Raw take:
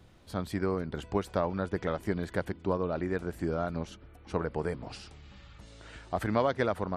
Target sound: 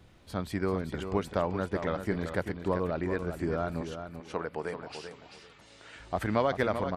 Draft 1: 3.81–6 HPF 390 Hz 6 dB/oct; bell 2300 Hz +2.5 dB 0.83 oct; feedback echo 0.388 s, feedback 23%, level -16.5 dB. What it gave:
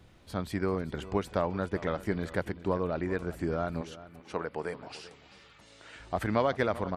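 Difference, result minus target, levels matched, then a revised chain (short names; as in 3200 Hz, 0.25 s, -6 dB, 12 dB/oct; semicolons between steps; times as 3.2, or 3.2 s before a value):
echo-to-direct -8 dB
3.81–6 HPF 390 Hz 6 dB/oct; bell 2300 Hz +2.5 dB 0.83 oct; feedback echo 0.388 s, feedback 23%, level -8.5 dB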